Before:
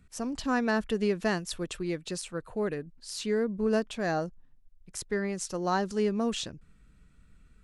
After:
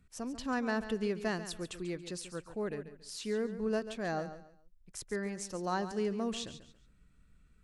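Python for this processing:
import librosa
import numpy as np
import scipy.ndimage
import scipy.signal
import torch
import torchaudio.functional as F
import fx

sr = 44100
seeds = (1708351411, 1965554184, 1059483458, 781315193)

y = fx.echo_feedback(x, sr, ms=140, feedback_pct=27, wet_db=-12.0)
y = y * 10.0 ** (-6.0 / 20.0)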